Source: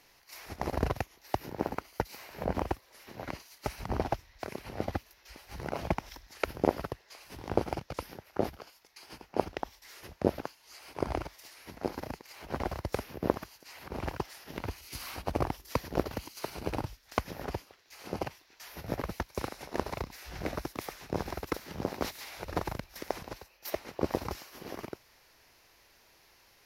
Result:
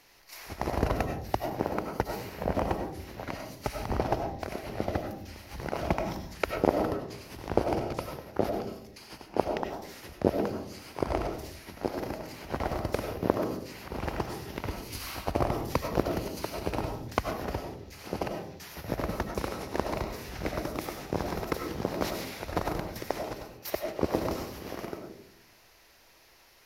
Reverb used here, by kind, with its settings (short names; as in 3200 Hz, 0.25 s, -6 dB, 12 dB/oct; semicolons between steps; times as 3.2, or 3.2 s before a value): digital reverb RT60 0.69 s, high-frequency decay 0.25×, pre-delay 55 ms, DRR 4 dB; gain +2 dB